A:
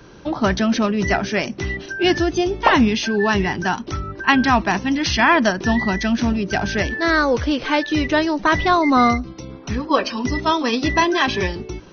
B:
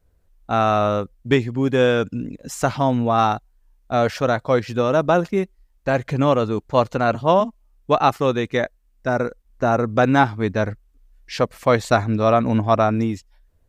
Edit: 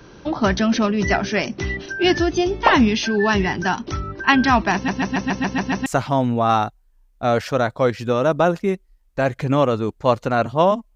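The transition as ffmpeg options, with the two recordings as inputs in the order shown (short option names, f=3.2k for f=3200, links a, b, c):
-filter_complex "[0:a]apad=whole_dur=10.95,atrim=end=10.95,asplit=8[a][b][c][d][e][f][g][h];[a]atrim=end=4.882[i];[b]atrim=start=4.738:end=4.882[j];[c]atrim=start=4.738:end=4.882[k];[d]atrim=start=4.738:end=4.882[l];[e]atrim=start=4.738:end=4.882[m];[f]atrim=start=4.738:end=4.882[n];[g]atrim=start=4.738:end=4.882[o];[h]atrim=start=4.738:end=4.882[p];[1:a]atrim=start=2.548:end=7.64[q];[i][j]acrossfade=d=0.004:c1=hsin:c2=hsin[r];[r][k]acrossfade=d=0.004:c1=hsin:c2=hsin[s];[s][l]acrossfade=d=0.004:c1=hsin:c2=hsin[t];[t][m]acrossfade=d=0.004:c1=hsin:c2=hsin[u];[u][n]acrossfade=d=0.004:c1=hsin:c2=hsin[v];[v][o]acrossfade=d=0.004:c1=hsin:c2=hsin[w];[w][p]acrossfade=d=0.004:c1=hsin:c2=hsin[x];[x][q]acrossfade=d=0.004:c1=hsin:c2=hsin"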